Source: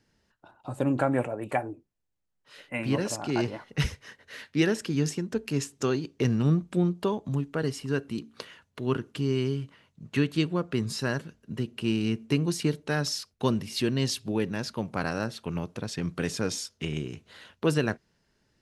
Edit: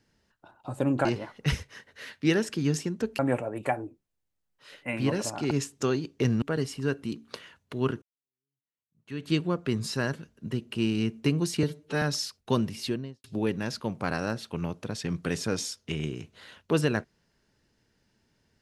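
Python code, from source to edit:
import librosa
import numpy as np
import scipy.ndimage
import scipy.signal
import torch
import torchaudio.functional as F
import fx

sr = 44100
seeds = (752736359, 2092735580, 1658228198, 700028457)

y = fx.studio_fade_out(x, sr, start_s=13.65, length_s=0.52)
y = fx.edit(y, sr, fx.move(start_s=3.37, length_s=2.14, to_s=1.05),
    fx.cut(start_s=6.42, length_s=1.06),
    fx.fade_in_span(start_s=9.08, length_s=1.28, curve='exp'),
    fx.stretch_span(start_s=12.69, length_s=0.26, factor=1.5), tone=tone)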